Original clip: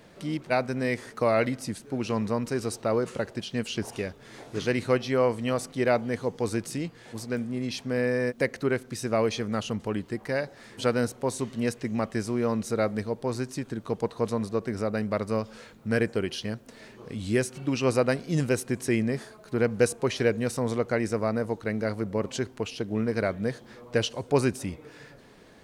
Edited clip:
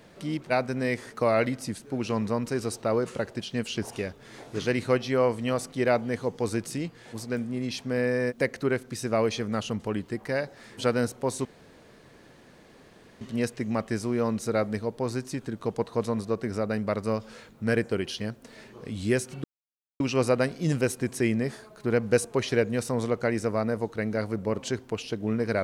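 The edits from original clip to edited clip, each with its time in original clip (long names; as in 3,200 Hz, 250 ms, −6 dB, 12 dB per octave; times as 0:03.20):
0:11.45: splice in room tone 1.76 s
0:17.68: splice in silence 0.56 s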